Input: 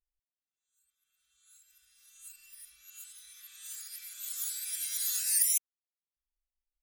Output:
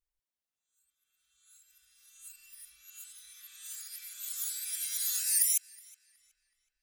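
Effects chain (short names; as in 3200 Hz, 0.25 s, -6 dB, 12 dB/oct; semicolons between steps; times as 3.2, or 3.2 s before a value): tape echo 0.37 s, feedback 48%, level -19 dB, low-pass 4200 Hz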